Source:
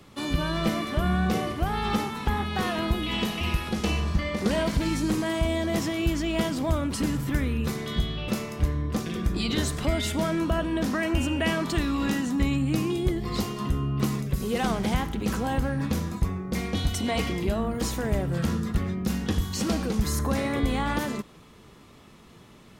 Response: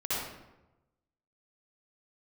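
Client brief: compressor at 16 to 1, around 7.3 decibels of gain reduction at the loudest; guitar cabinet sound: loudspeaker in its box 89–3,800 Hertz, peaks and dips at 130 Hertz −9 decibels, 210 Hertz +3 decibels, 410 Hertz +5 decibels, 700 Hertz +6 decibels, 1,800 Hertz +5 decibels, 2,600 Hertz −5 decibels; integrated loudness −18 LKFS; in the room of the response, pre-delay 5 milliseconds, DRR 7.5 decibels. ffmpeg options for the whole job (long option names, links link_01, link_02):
-filter_complex "[0:a]acompressor=threshold=-26dB:ratio=16,asplit=2[link_01][link_02];[1:a]atrim=start_sample=2205,adelay=5[link_03];[link_02][link_03]afir=irnorm=-1:irlink=0,volume=-15dB[link_04];[link_01][link_04]amix=inputs=2:normalize=0,highpass=89,equalizer=frequency=130:width_type=q:width=4:gain=-9,equalizer=frequency=210:width_type=q:width=4:gain=3,equalizer=frequency=410:width_type=q:width=4:gain=5,equalizer=frequency=700:width_type=q:width=4:gain=6,equalizer=frequency=1800:width_type=q:width=4:gain=5,equalizer=frequency=2600:width_type=q:width=4:gain=-5,lowpass=frequency=3800:width=0.5412,lowpass=frequency=3800:width=1.3066,volume=12dB"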